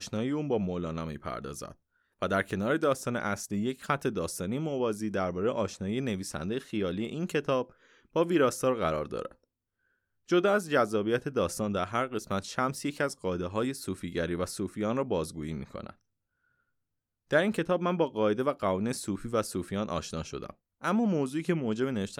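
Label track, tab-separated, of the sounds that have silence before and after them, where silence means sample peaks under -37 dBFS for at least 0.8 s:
10.300000	15.900000	sound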